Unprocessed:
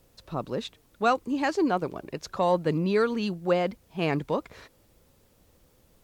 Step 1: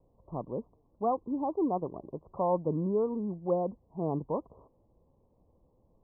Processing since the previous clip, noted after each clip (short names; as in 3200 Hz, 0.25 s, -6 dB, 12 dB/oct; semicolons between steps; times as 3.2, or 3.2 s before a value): steep low-pass 1100 Hz 96 dB/oct; gain -4.5 dB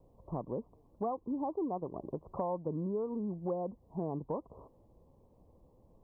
compressor 4:1, threshold -38 dBFS, peak gain reduction 12.5 dB; gain +4 dB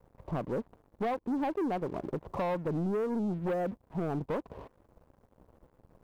sample leveller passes 3; gain -3.5 dB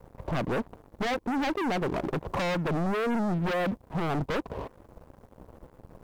sine folder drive 7 dB, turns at -25 dBFS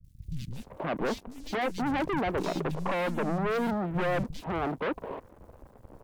three bands offset in time lows, highs, mids 40/520 ms, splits 170/3500 Hz